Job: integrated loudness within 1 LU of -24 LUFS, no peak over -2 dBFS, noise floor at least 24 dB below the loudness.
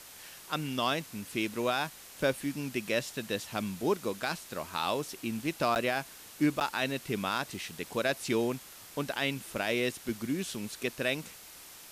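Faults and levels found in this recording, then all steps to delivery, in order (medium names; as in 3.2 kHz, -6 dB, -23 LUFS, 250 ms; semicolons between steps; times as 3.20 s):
dropouts 2; longest dropout 9.5 ms; noise floor -50 dBFS; noise floor target -57 dBFS; loudness -33.0 LUFS; peak level -16.5 dBFS; loudness target -24.0 LUFS
-> interpolate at 5.75/6.60 s, 9.5 ms; noise print and reduce 7 dB; trim +9 dB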